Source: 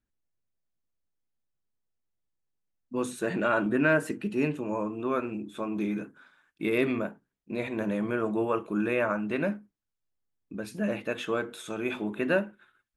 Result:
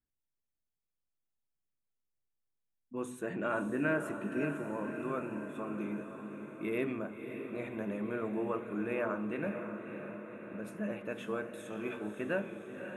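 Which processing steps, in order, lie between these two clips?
bell 4600 Hz -13 dB 0.7 oct; diffused feedback echo 0.571 s, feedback 62%, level -8 dB; on a send at -16 dB: reverb RT60 1.1 s, pre-delay 3 ms; on the sum: gain -8 dB

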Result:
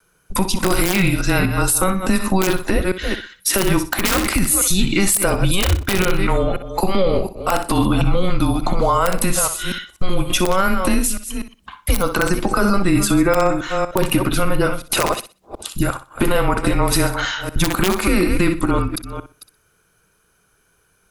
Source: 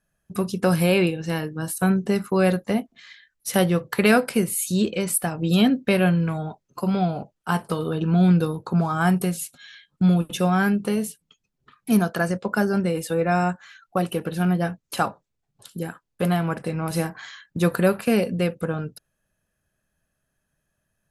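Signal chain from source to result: reverse delay 0.243 s, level -13 dB; wrapped overs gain 9.5 dB; compressor 3:1, threshold -24 dBFS, peak gain reduction 8.5 dB; low shelf 210 Hz -10.5 dB; on a send: flutter echo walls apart 10.6 m, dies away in 0.29 s; on the sum: frequency shift -190 Hz; wrapped overs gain 14.5 dB; vibrato 0.31 Hz 8.5 cents; maximiser +22.5 dB; gain -5.5 dB

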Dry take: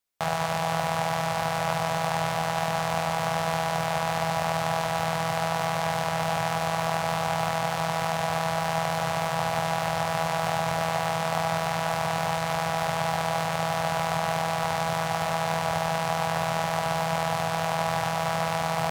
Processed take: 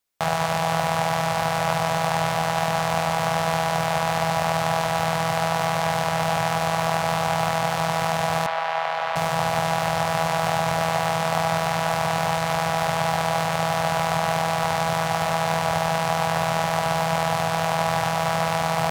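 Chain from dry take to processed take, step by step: 8.46–9.16 three-band isolator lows -22 dB, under 510 Hz, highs -22 dB, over 4000 Hz; gain +4 dB

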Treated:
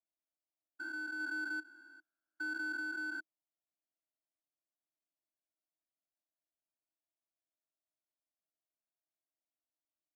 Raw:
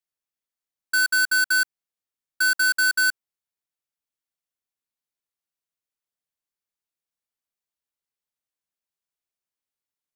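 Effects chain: stepped spectrum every 0.4 s; double band-pass 450 Hz, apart 1 oct; gain +5.5 dB

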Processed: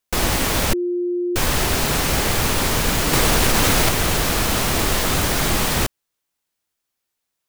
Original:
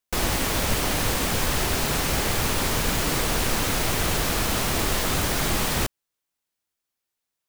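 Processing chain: 0.73–1.36 bleep 353 Hz -23.5 dBFS; 3.13–3.89 fast leveller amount 100%; gain +4.5 dB

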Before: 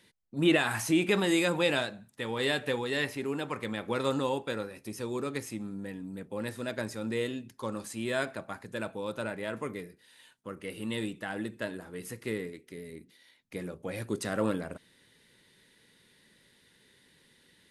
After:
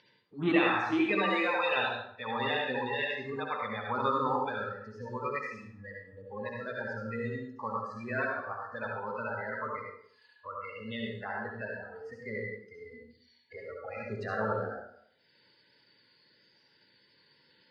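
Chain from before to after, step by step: bin magnitudes rounded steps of 30 dB; spectral noise reduction 22 dB; 5.34–6.08 tilt shelf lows -4.5 dB, about 790 Hz; upward compressor, threshold -41 dBFS; speaker cabinet 120–3700 Hz, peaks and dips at 140 Hz +4 dB, 810 Hz +6 dB, 1200 Hz +8 dB; reverb RT60 0.65 s, pre-delay 57 ms, DRR -1 dB; gain -4 dB

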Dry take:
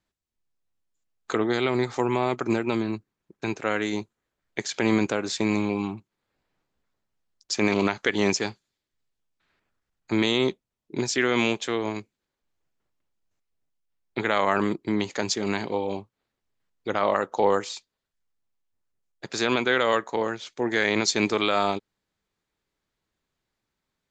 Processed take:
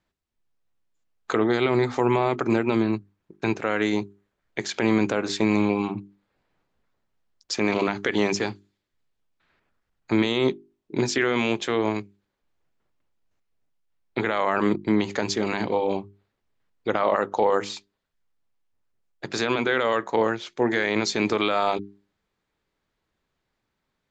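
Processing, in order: limiter -15 dBFS, peak gain reduction 7.5 dB; high shelf 5800 Hz -12 dB; notches 50/100/150/200/250/300/350/400 Hz; gain +5 dB

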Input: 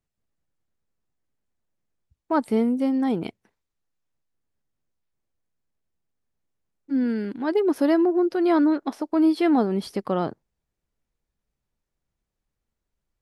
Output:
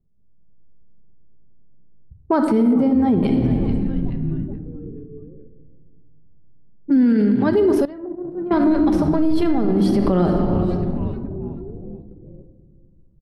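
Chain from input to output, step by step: 9.12–9.7 half-wave gain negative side -3 dB; AGC gain up to 6 dB; frequency-shifting echo 0.429 s, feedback 63%, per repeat -140 Hz, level -21 dB; shoebox room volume 2100 m³, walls mixed, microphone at 1.2 m; compressor 2:1, threshold -28 dBFS, peak gain reduction 11 dB; low shelf 390 Hz +8 dB; limiter -17 dBFS, peak gain reduction 9.5 dB; 2.73–3.23 high shelf 2700 Hz -11.5 dB; 7.85–8.51 gate -20 dBFS, range -19 dB; low-pass opened by the level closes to 400 Hz, open at -20.5 dBFS; gain +7.5 dB

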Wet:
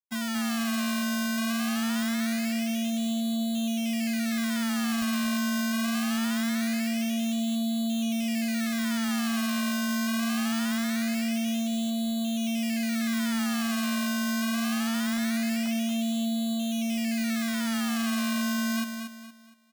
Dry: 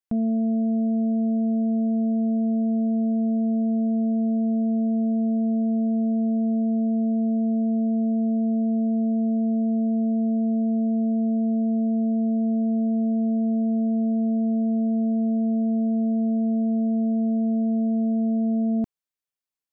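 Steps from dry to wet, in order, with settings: sine-wave speech; decimation with a swept rate 23×, swing 100% 0.23 Hz; bell 390 Hz -13.5 dB 2 oct; crossover distortion -48 dBFS; on a send: feedback echo 0.233 s, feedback 35%, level -7 dB

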